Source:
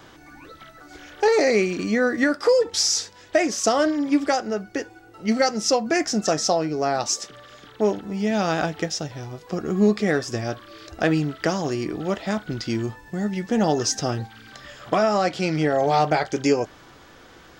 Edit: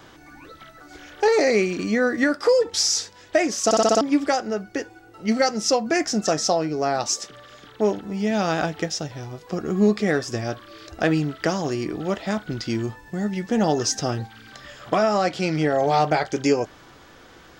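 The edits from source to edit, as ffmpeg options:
-filter_complex "[0:a]asplit=7[s0][s1][s2][s3][s4][s5][s6];[s0]atrim=end=3.712[s7];[s1]atrim=start=3.648:end=3.712[s8];[s2]atrim=start=3.648:end=3.712[s9];[s3]atrim=start=3.648:end=3.712[s10];[s4]atrim=start=3.648:end=3.712[s11];[s5]atrim=start=3.648:end=3.712[s12];[s6]atrim=start=4.008[s13];[s7][s8]acrossfade=d=0.004:c1=hsin:c2=hsin[s14];[s14][s9]acrossfade=d=0.004:c1=hsin:c2=hsin[s15];[s15][s10]acrossfade=d=0.004:c1=hsin:c2=hsin[s16];[s16][s11]acrossfade=d=0.004:c1=hsin:c2=hsin[s17];[s17][s12]acrossfade=d=0.004:c1=hsin:c2=hsin[s18];[s18][s13]acrossfade=d=0.004:c1=hsin:c2=hsin"

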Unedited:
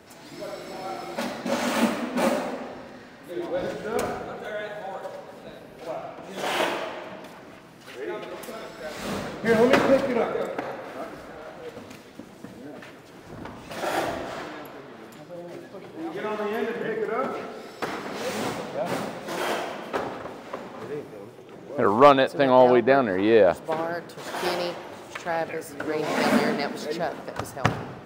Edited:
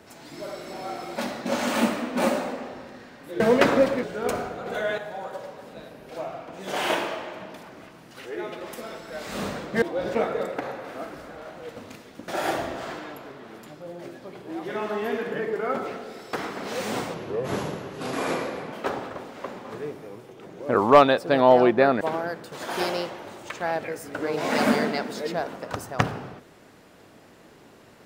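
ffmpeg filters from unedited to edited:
-filter_complex "[0:a]asplit=11[s0][s1][s2][s3][s4][s5][s6][s7][s8][s9][s10];[s0]atrim=end=3.402[s11];[s1]atrim=start=9.518:end=10.152[s12];[s2]atrim=start=3.728:end=4.362[s13];[s3]atrim=start=4.358:end=4.682,asetpts=PTS-STARTPTS,volume=1.88[s14];[s4]atrim=start=4.678:end=9.522[s15];[s5]atrim=start=3.398:end=3.732[s16];[s6]atrim=start=10.148:end=12.282[s17];[s7]atrim=start=13.768:end=18.634[s18];[s8]atrim=start=18.63:end=19.82,asetpts=PTS-STARTPTS,asetrate=33075,aresample=44100[s19];[s9]atrim=start=19.816:end=23.102[s20];[s10]atrim=start=23.658[s21];[s11][s12]acrossfade=d=0.004:c1=hsin:c2=hsin[s22];[s22][s13]acrossfade=d=0.004:c1=hsin:c2=hsin[s23];[s23][s14]acrossfade=d=0.004:c1=hsin:c2=hsin[s24];[s24][s15]acrossfade=d=0.004:c1=hsin:c2=hsin[s25];[s25][s16]acrossfade=d=0.004:c1=hsin:c2=hsin[s26];[s26][s17]acrossfade=d=0.004:c1=hsin:c2=hsin[s27];[s27][s18]acrossfade=d=0.004:c1=hsin:c2=hsin[s28];[s28][s19]acrossfade=d=0.004:c1=hsin:c2=hsin[s29];[s29][s20]acrossfade=d=0.004:c1=hsin:c2=hsin[s30];[s30][s21]acrossfade=d=0.004:c1=hsin:c2=hsin"

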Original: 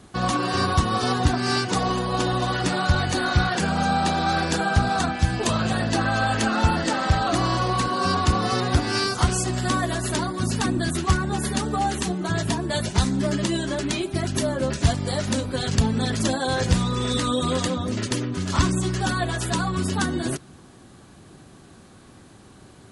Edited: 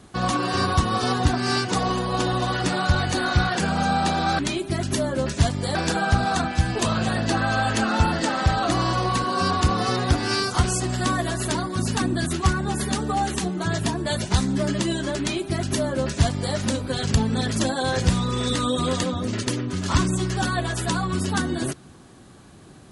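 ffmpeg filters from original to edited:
-filter_complex "[0:a]asplit=3[s0][s1][s2];[s0]atrim=end=4.392[s3];[s1]atrim=start=13.828:end=15.192[s4];[s2]atrim=start=4.388[s5];[s3][s4]acrossfade=d=0.004:c1=hsin:c2=hsin[s6];[s6][s5]acrossfade=d=0.004:c1=hsin:c2=hsin"

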